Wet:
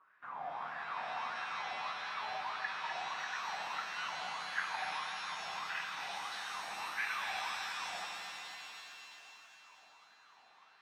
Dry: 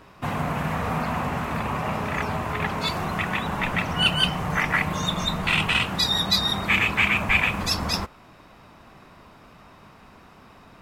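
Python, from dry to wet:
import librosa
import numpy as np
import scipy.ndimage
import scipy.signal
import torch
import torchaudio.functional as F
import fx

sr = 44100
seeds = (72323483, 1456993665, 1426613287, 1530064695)

y = fx.wah_lfo(x, sr, hz=1.6, low_hz=730.0, high_hz=1700.0, q=9.3)
y = fx.echo_feedback(y, sr, ms=250, feedback_pct=53, wet_db=-9)
y = fx.rev_shimmer(y, sr, seeds[0], rt60_s=2.7, semitones=7, shimmer_db=-2, drr_db=3.5)
y = y * librosa.db_to_amplitude(-5.0)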